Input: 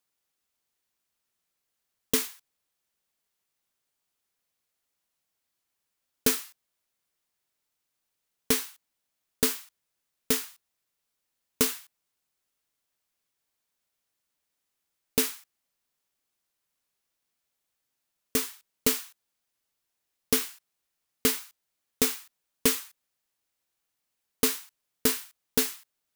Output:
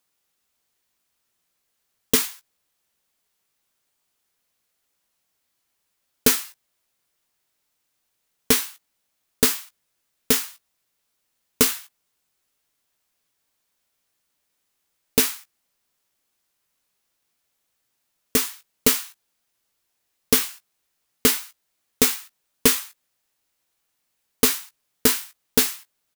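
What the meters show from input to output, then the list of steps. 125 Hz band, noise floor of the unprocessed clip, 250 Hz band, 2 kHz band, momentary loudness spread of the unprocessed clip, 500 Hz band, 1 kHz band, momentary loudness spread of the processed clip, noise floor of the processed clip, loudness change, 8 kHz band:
+7.0 dB, −82 dBFS, +5.5 dB, +7.0 dB, 12 LU, +5.5 dB, +7.0 dB, 13 LU, −75 dBFS, +6.5 dB, +7.0 dB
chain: double-tracking delay 17 ms −10 dB
level +6.5 dB

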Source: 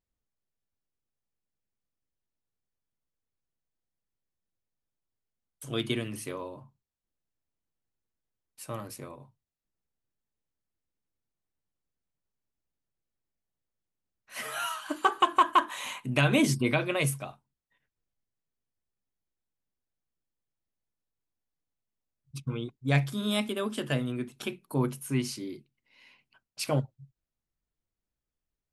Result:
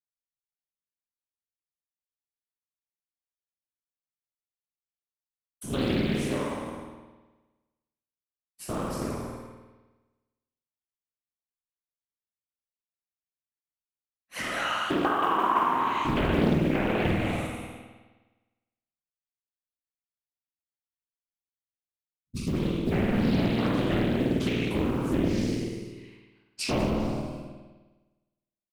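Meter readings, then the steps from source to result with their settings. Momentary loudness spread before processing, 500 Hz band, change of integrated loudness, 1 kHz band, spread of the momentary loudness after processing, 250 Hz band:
19 LU, +4.5 dB, +2.5 dB, +2.0 dB, 17 LU, +6.0 dB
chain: peak hold with a decay on every bin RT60 1.28 s
treble cut that deepens with the level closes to 2,200 Hz, closed at −21 dBFS
parametric band 220 Hz +9 dB 0.98 octaves
downward expander −47 dBFS
downward compressor 5 to 1, threshold −25 dBFS, peak gain reduction 12.5 dB
noise that follows the level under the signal 29 dB
random phases in short frames
single-tap delay 195 ms −17.5 dB
spring reverb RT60 1.2 s, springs 51 ms, chirp 35 ms, DRR 0.5 dB
highs frequency-modulated by the lows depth 0.65 ms

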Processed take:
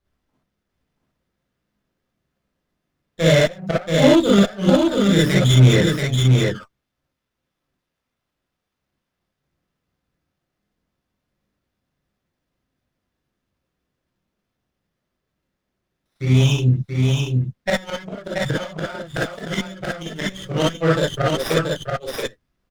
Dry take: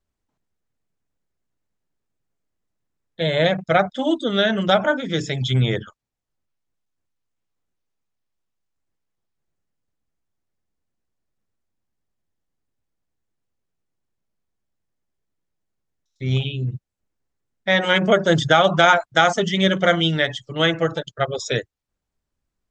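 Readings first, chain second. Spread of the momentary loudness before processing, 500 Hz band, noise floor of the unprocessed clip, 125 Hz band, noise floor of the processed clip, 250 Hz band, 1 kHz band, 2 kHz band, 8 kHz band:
10 LU, +0.5 dB, −82 dBFS, +7.5 dB, −80 dBFS, +5.0 dB, −7.0 dB, −4.0 dB, +6.0 dB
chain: gate with flip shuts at −9 dBFS, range −29 dB
sine wavefolder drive 6 dB, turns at −5.5 dBFS
on a send: single-tap delay 681 ms −3.5 dB
on the sum: reverb whose tail is shaped and stops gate 80 ms rising, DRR −5.5 dB
windowed peak hold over 5 samples
level −8 dB

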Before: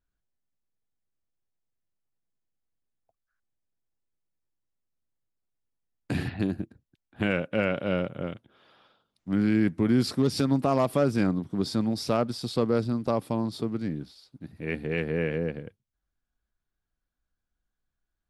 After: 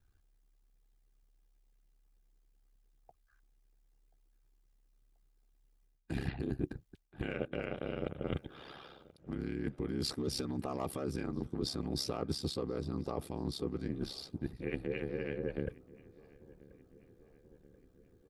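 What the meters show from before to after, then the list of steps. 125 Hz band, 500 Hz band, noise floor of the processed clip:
−9.5 dB, −10.5 dB, −71 dBFS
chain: comb filter 2.5 ms, depth 47%
brickwall limiter −22.5 dBFS, peak gain reduction 11.5 dB
low-shelf EQ 370 Hz +4.5 dB
reversed playback
downward compressor 12 to 1, threshold −40 dBFS, peak gain reduction 17 dB
reversed playback
ring modulation 34 Hz
harmonic and percussive parts rebalanced percussive +6 dB
on a send: feedback echo with a low-pass in the loop 1,033 ms, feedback 65%, low-pass 1,900 Hz, level −21.5 dB
on the sum: level +6 dB

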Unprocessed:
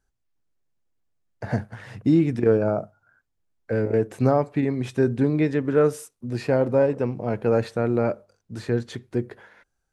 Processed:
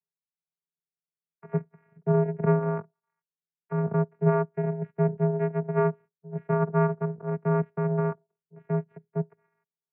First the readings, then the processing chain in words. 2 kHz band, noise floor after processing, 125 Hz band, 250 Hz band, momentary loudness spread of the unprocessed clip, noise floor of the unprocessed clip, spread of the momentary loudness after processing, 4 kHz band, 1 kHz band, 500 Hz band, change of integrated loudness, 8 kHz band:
−6.0 dB, below −85 dBFS, −0.5 dB, −6.0 dB, 11 LU, −76 dBFS, 10 LU, below −25 dB, −0.5 dB, −5.5 dB, −4.0 dB, below −30 dB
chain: harmonic generator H 3 −12 dB, 4 −15 dB, 7 −35 dB, 8 −25 dB, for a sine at −6.5 dBFS
channel vocoder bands 8, saw 251 Hz
single-sideband voice off tune −89 Hz 200–2,200 Hz

